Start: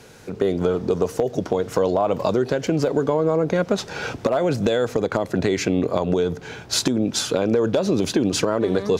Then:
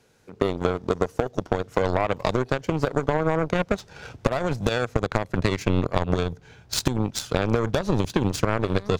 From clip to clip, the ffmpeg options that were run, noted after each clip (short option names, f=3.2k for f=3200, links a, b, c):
-af "aeval=exprs='0.708*(cos(1*acos(clip(val(0)/0.708,-1,1)))-cos(1*PI/2))+0.0398*(cos(5*acos(clip(val(0)/0.708,-1,1)))-cos(5*PI/2))+0.112*(cos(7*acos(clip(val(0)/0.708,-1,1)))-cos(7*PI/2))':c=same,asubboost=boost=3.5:cutoff=140"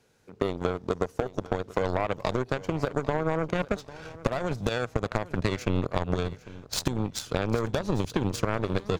-af "aecho=1:1:798|1596:0.126|0.029,volume=-4.5dB"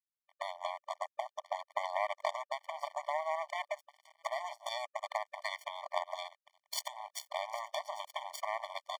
-af "aeval=exprs='sgn(val(0))*max(abs(val(0))-0.0178,0)':c=same,afftfilt=real='re*eq(mod(floor(b*sr/1024/600),2),1)':imag='im*eq(mod(floor(b*sr/1024/600),2),1)':win_size=1024:overlap=0.75,volume=-1.5dB"